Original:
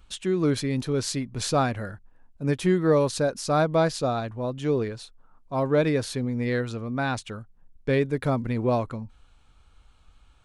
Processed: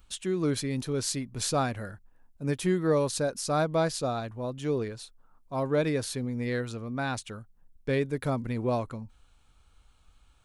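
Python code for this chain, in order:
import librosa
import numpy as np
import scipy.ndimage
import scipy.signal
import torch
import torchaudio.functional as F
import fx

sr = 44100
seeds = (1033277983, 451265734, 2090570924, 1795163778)

y = fx.high_shelf(x, sr, hz=8200.0, db=11.5)
y = F.gain(torch.from_numpy(y), -4.5).numpy()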